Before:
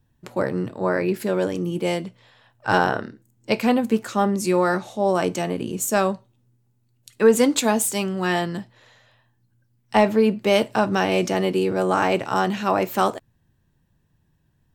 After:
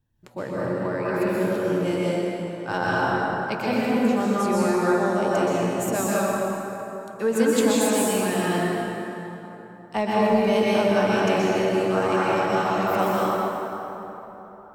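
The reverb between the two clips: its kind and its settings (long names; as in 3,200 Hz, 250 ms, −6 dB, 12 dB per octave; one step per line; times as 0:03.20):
dense smooth reverb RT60 3.6 s, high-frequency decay 0.55×, pre-delay 110 ms, DRR −7.5 dB
level −9 dB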